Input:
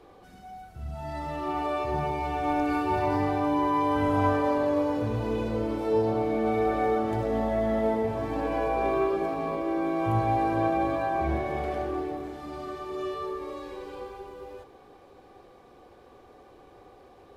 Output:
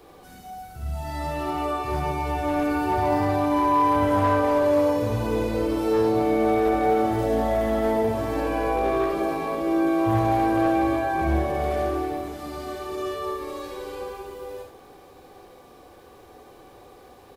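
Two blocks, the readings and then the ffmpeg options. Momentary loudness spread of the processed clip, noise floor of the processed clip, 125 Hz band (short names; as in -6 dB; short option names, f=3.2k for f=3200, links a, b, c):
14 LU, -49 dBFS, +3.5 dB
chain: -filter_complex "[0:a]aemphasis=mode=production:type=50kf,acrossover=split=1700[a][b];[b]alimiter=level_in=15dB:limit=-24dB:level=0:latency=1:release=13,volume=-15dB[c];[a][c]amix=inputs=2:normalize=0,asoftclip=type=hard:threshold=-19.5dB,aecho=1:1:58|70:0.447|0.447,volume=2.5dB"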